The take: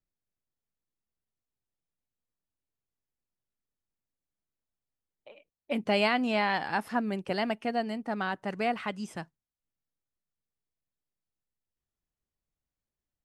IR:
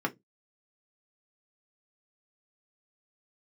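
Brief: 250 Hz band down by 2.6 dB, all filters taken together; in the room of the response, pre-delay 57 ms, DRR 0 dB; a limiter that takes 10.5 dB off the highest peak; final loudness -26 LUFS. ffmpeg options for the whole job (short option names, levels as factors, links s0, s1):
-filter_complex "[0:a]equalizer=f=250:t=o:g=-3,alimiter=level_in=1.06:limit=0.0631:level=0:latency=1,volume=0.944,asplit=2[s0][s1];[1:a]atrim=start_sample=2205,adelay=57[s2];[s1][s2]afir=irnorm=-1:irlink=0,volume=0.422[s3];[s0][s3]amix=inputs=2:normalize=0,volume=1.88"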